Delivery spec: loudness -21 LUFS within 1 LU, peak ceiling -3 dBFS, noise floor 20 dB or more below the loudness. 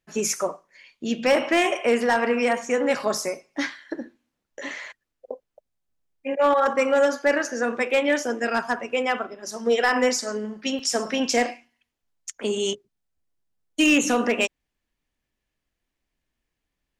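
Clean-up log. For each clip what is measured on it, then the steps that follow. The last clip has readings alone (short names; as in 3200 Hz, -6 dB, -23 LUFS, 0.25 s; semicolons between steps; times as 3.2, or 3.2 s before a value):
clipped 0.3%; flat tops at -12.0 dBFS; dropouts 2; longest dropout 2.5 ms; loudness -23.0 LUFS; peak -12.0 dBFS; loudness target -21.0 LUFS
-> clip repair -12 dBFS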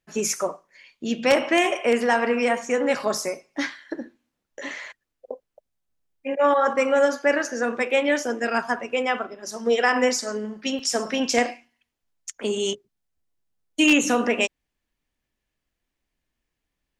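clipped 0.0%; dropouts 2; longest dropout 2.5 ms
-> interpolate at 4.86/10.79, 2.5 ms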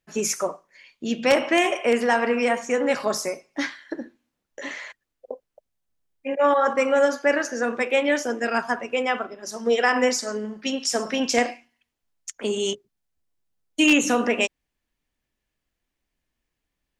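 dropouts 0; loudness -23.0 LUFS; peak -3.0 dBFS; loudness target -21.0 LUFS
-> gain +2 dB; limiter -3 dBFS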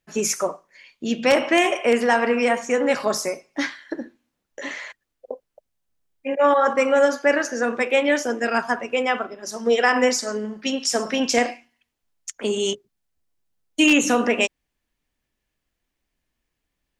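loudness -21.0 LUFS; peak -3.0 dBFS; noise floor -79 dBFS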